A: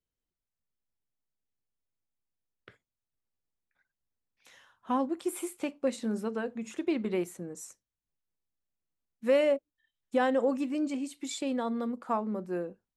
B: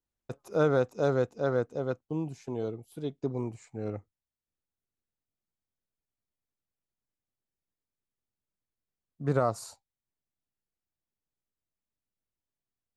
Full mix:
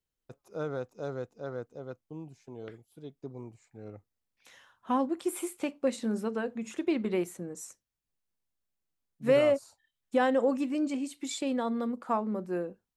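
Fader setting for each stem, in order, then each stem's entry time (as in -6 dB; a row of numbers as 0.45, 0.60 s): +1.0, -10.0 dB; 0.00, 0.00 s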